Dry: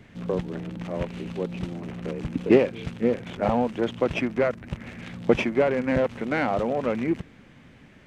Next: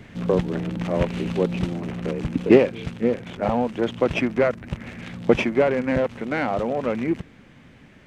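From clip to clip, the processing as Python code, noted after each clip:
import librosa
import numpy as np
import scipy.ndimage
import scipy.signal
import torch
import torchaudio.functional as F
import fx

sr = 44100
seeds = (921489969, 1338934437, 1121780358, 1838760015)

y = fx.rider(x, sr, range_db=10, speed_s=2.0)
y = y * 10.0 ** (1.5 / 20.0)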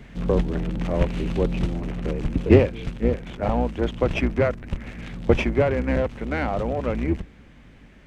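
y = fx.octave_divider(x, sr, octaves=2, level_db=2.0)
y = y * 10.0 ** (-2.0 / 20.0)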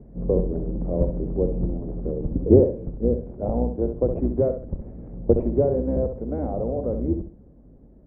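y = fx.ladder_lowpass(x, sr, hz=670.0, resonance_pct=30)
y = fx.echo_feedback(y, sr, ms=66, feedback_pct=28, wet_db=-8)
y = y * 10.0 ** (4.5 / 20.0)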